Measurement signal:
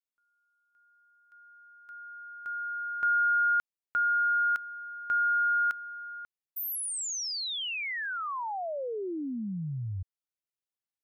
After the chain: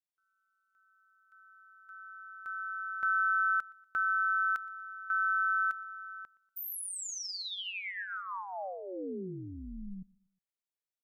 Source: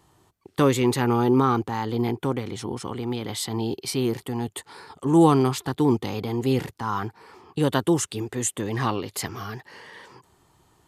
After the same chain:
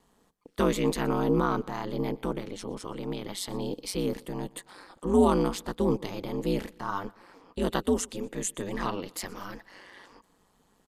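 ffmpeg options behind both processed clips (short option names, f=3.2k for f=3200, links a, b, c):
-filter_complex "[0:a]aecho=1:1:2.8:0.31,aeval=exprs='val(0)*sin(2*PI*95*n/s)':c=same,asplit=2[a][b];[b]aecho=0:1:120|240|360:0.0631|0.0259|0.0106[c];[a][c]amix=inputs=2:normalize=0,volume=-3dB"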